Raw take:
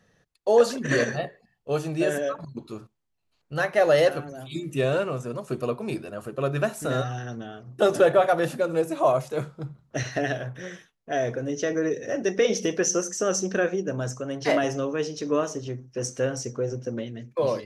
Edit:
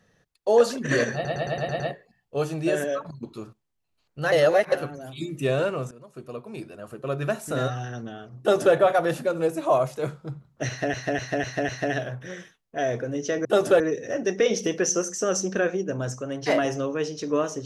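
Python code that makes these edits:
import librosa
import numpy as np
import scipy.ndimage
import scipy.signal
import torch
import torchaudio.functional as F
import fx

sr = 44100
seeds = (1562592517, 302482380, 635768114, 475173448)

y = fx.edit(x, sr, fx.stutter(start_s=1.14, slice_s=0.11, count=7),
    fx.reverse_span(start_s=3.66, length_s=0.4),
    fx.fade_in_from(start_s=5.25, length_s=1.68, floor_db=-17.5),
    fx.duplicate(start_s=7.74, length_s=0.35, to_s=11.79),
    fx.repeat(start_s=10.03, length_s=0.25, count=5), tone=tone)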